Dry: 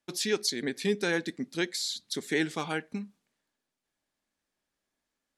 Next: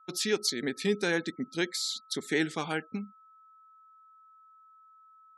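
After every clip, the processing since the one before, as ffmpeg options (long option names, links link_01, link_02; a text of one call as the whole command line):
ffmpeg -i in.wav -af "aeval=exprs='val(0)+0.00178*sin(2*PI*1300*n/s)':channel_layout=same,afftfilt=real='re*gte(hypot(re,im),0.00355)':imag='im*gte(hypot(re,im),0.00355)':win_size=1024:overlap=0.75" out.wav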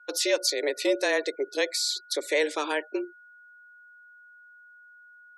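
ffmpeg -i in.wav -filter_complex "[0:a]asplit=2[link_01][link_02];[link_02]alimiter=limit=-23dB:level=0:latency=1:release=19,volume=-1.5dB[link_03];[link_01][link_03]amix=inputs=2:normalize=0,afreqshift=150" out.wav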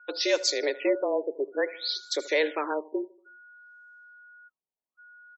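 ffmpeg -i in.wav -af "aecho=1:1:78|156|234|312:0.112|0.055|0.0269|0.0132,afftfilt=real='re*lt(b*sr/1024,960*pow(7900/960,0.5+0.5*sin(2*PI*0.58*pts/sr)))':imag='im*lt(b*sr/1024,960*pow(7900/960,0.5+0.5*sin(2*PI*0.58*pts/sr)))':win_size=1024:overlap=0.75" out.wav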